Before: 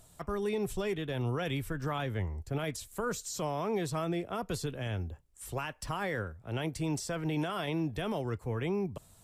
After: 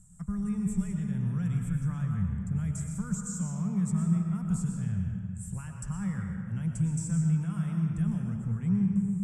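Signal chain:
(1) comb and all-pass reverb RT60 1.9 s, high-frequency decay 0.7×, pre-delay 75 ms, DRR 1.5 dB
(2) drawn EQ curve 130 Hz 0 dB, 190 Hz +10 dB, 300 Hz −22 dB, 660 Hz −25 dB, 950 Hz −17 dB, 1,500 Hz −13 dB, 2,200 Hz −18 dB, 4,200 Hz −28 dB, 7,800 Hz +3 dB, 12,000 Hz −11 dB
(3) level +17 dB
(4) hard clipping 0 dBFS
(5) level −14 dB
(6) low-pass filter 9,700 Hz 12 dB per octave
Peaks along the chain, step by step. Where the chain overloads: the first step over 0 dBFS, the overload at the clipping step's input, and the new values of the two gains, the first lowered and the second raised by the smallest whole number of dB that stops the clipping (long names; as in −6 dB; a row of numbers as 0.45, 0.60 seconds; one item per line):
−20.0, −19.0, −2.0, −2.0, −16.0, −16.0 dBFS
no step passes full scale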